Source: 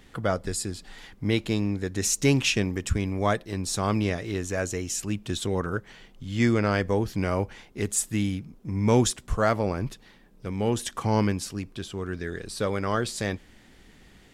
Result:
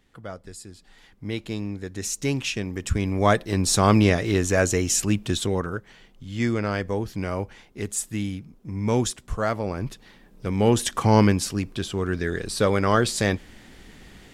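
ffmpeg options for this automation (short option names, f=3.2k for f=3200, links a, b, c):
-af "volume=16.5dB,afade=t=in:st=0.65:d=0.96:silence=0.446684,afade=t=in:st=2.63:d=1.01:silence=0.251189,afade=t=out:st=4.99:d=0.79:silence=0.316228,afade=t=in:st=9.64:d=1:silence=0.375837"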